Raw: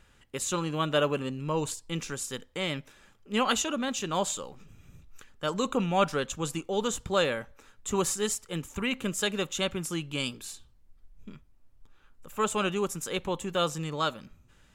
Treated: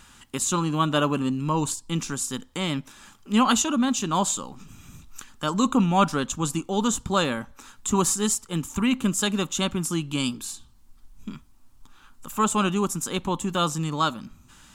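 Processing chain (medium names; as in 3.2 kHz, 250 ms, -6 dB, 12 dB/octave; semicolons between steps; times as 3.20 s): graphic EQ 250/500/1000/2000/8000 Hz +8/-9/+6/-6/+3 dB; tape noise reduction on one side only encoder only; trim +4.5 dB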